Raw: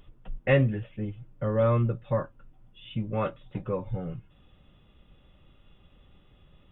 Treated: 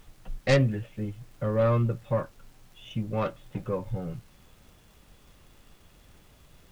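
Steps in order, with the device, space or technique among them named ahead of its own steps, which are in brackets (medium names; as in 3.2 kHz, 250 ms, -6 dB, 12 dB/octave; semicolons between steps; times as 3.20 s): record under a worn stylus (tracing distortion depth 0.16 ms; crackle; pink noise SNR 30 dB)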